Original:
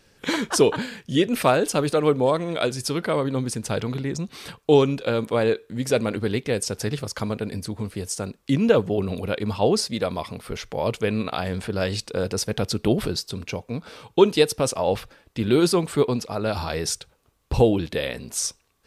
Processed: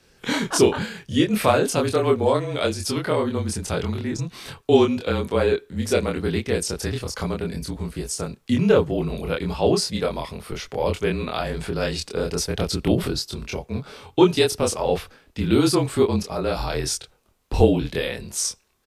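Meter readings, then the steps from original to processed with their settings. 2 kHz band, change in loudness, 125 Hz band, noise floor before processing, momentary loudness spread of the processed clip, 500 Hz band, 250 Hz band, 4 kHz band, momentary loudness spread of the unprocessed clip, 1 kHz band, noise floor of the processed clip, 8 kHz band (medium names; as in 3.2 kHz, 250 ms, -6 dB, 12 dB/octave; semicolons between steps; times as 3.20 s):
+1.0 dB, +1.0 dB, +1.5 dB, -63 dBFS, 11 LU, +0.5 dB, +1.5 dB, +1.0 dB, 12 LU, +0.5 dB, -59 dBFS, +1.0 dB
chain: doubling 25 ms -2 dB; frequency shift -31 Hz; trim -1 dB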